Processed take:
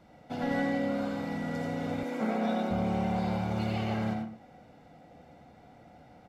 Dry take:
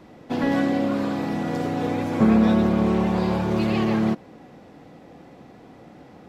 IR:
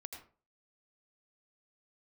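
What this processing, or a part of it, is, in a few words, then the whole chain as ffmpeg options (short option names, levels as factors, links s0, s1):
microphone above a desk: -filter_complex "[0:a]aecho=1:1:1.4:0.51[s0];[1:a]atrim=start_sample=2205[s1];[s0][s1]afir=irnorm=-1:irlink=0,asettb=1/sr,asplit=3[s2][s3][s4];[s2]atrim=end=2.034[s5];[s3]atrim=start=2.03:end=2.71,asetpts=PTS-STARTPTS,afade=t=in:d=0.004:c=qsin,afade=t=out:st=0.676:d=0.004:c=qsin,highpass=f=230:w=0.5412,highpass=f=230:w=1.3066[s6];[s4]atrim=start=2.706[s7];[s5][s6]acrossfade=d=0.004:c1=hsin:c2=qsin[s8];[s8][s7]acrossfade=d=0.004:c1=qsin:c2=hsin,volume=0.596"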